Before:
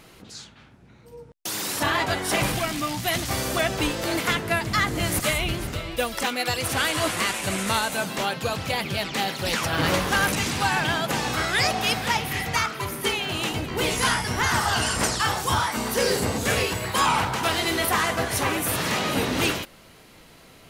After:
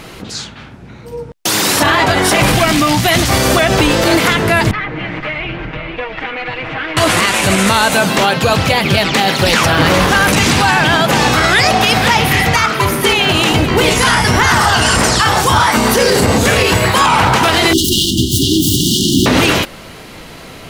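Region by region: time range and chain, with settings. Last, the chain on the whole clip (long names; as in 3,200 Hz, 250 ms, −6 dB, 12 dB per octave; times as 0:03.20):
0:04.71–0:06.97: lower of the sound and its delayed copy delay 6.4 ms + transistor ladder low-pass 2,800 Hz, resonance 40% + downward compressor 2.5 to 1, threshold −37 dBFS
0:17.73–0:19.26: phase distortion by the signal itself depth 0.4 ms + linear-phase brick-wall band-stop 390–2,800 Hz + parametric band 630 Hz +4 dB 2.4 octaves
whole clip: high-shelf EQ 7,700 Hz −6.5 dB; boost into a limiter +18.5 dB; level −1 dB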